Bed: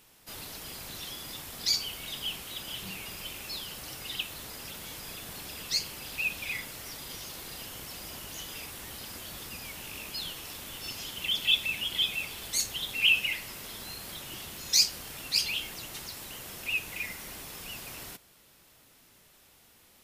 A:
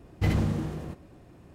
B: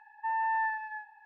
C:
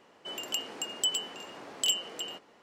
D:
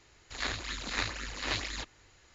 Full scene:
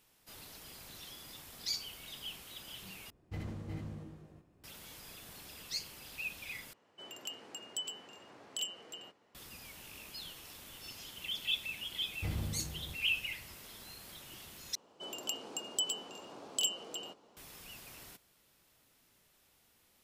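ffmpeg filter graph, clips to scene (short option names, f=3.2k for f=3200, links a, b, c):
-filter_complex "[1:a]asplit=2[a][b];[3:a]asplit=2[c][d];[0:a]volume=-9.5dB[e];[a]aecho=1:1:81|358|377:0.316|0.422|0.501[f];[c]equalizer=f=100:w=1.3:g=7[g];[b]asubboost=boost=11:cutoff=120[h];[d]equalizer=f=1.9k:w=1.9:g=-11.5[i];[e]asplit=4[j][k][l][m];[j]atrim=end=3.104[n];[f]atrim=end=1.54,asetpts=PTS-STARTPTS,volume=-17dB[o];[k]atrim=start=4.636:end=6.734[p];[g]atrim=end=2.62,asetpts=PTS-STARTPTS,volume=-10.5dB[q];[l]atrim=start=9.346:end=14.754[r];[i]atrim=end=2.62,asetpts=PTS-STARTPTS,volume=-3dB[s];[m]atrim=start=17.366[t];[h]atrim=end=1.54,asetpts=PTS-STARTPTS,volume=-14.5dB,afade=t=in:d=0.004:c=hsin,afade=t=out:st=1.536:d=0.004:c=hsin,adelay=12010[u];[n][o]acrossfade=d=0.004:c1=hsin:c2=hsin[v];[v][p]acrossfade=d=0.004:c1=hsin:c2=hsin[w];[w][q]acrossfade=d=0.004:c1=hsin:c2=hsin[x];[x][r]acrossfade=d=0.004:c1=hsin:c2=hsin[y];[y][s]acrossfade=d=0.004:c1=hsin:c2=hsin[z];[z][t]acrossfade=d=0.004:c1=hsin:c2=hsin[aa];[aa][u]amix=inputs=2:normalize=0"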